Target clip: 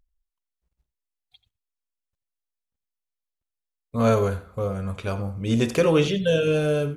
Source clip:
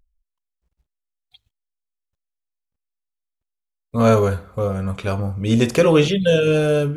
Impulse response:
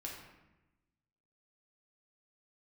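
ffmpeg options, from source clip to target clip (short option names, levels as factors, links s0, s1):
-af "aecho=1:1:86:0.158,volume=0.562"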